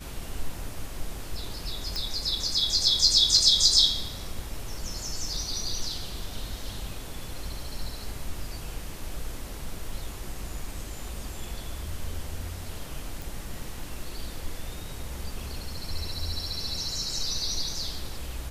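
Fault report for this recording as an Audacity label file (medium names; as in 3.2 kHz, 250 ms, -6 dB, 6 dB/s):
1.960000	1.960000	pop
13.220000	13.220000	pop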